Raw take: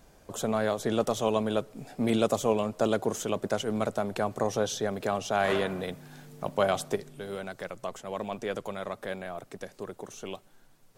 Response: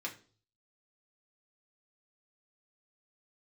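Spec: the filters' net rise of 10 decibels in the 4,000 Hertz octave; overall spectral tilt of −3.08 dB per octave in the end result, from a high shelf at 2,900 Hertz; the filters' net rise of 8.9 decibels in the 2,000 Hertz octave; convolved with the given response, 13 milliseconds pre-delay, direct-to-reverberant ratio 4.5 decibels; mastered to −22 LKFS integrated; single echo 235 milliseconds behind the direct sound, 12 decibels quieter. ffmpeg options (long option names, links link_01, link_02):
-filter_complex "[0:a]equalizer=frequency=2000:width_type=o:gain=8.5,highshelf=frequency=2900:gain=6,equalizer=frequency=4000:width_type=o:gain=5,aecho=1:1:235:0.251,asplit=2[link_01][link_02];[1:a]atrim=start_sample=2205,adelay=13[link_03];[link_02][link_03]afir=irnorm=-1:irlink=0,volume=-5.5dB[link_04];[link_01][link_04]amix=inputs=2:normalize=0,volume=4.5dB"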